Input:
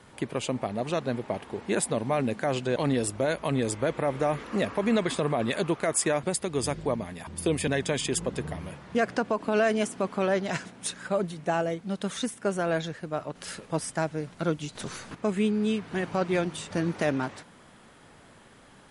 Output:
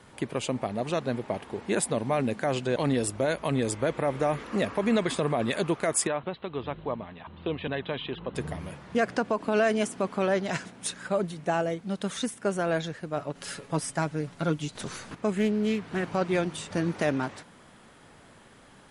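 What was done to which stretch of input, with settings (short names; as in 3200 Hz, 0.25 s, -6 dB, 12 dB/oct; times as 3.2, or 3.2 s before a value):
6.07–8.35 rippled Chebyshev low-pass 4100 Hz, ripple 6 dB
13.16–14.68 comb 7.1 ms, depth 45%
15.38–16.11 Doppler distortion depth 0.22 ms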